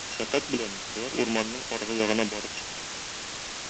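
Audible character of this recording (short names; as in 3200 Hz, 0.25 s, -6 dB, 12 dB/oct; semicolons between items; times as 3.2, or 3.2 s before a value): a buzz of ramps at a fixed pitch in blocks of 16 samples; random-step tremolo 3.5 Hz, depth 75%; a quantiser's noise floor 6-bit, dither triangular; G.722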